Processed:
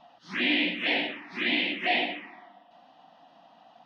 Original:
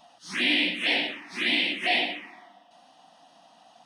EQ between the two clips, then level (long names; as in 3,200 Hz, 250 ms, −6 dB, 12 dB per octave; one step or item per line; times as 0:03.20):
high-frequency loss of the air 260 metres
+1.5 dB